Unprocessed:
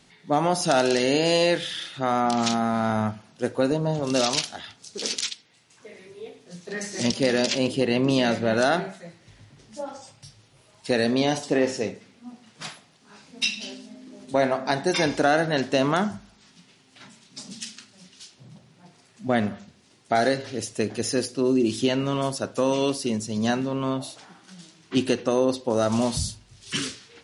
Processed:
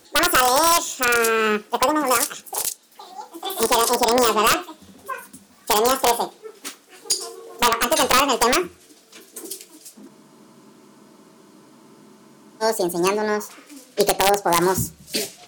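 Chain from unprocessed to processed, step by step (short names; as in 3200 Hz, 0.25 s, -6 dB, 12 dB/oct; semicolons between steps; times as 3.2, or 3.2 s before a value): speed glide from 200% -> 152%; wrapped overs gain 11 dB; spectral freeze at 10.11, 2.50 s; gain +4.5 dB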